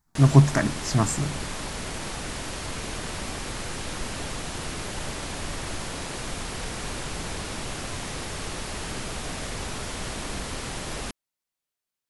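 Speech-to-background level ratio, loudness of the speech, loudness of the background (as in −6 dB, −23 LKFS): 11.5 dB, −21.5 LKFS, −33.0 LKFS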